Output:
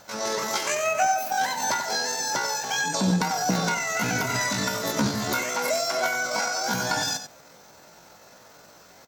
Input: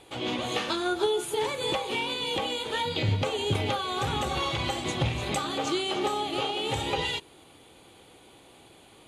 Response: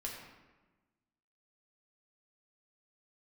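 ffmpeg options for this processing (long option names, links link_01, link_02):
-filter_complex "[0:a]asetrate=78577,aresample=44100,atempo=0.561231,asplit=2[link_01][link_02];[link_02]adelay=93.29,volume=-9dB,highshelf=frequency=4000:gain=-2.1[link_03];[link_01][link_03]amix=inputs=2:normalize=0,volume=3dB"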